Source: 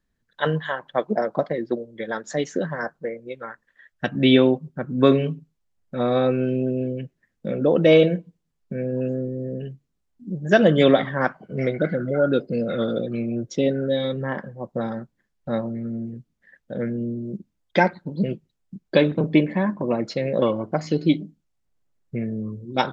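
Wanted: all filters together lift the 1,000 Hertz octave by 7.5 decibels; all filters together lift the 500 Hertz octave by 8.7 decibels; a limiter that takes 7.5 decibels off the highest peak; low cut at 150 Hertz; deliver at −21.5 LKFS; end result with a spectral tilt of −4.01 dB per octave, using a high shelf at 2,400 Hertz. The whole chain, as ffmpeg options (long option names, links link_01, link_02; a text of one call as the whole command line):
ffmpeg -i in.wav -af "highpass=150,equalizer=frequency=500:width_type=o:gain=8.5,equalizer=frequency=1000:width_type=o:gain=8,highshelf=frequency=2400:gain=-9,volume=-3.5dB,alimiter=limit=-6.5dB:level=0:latency=1" out.wav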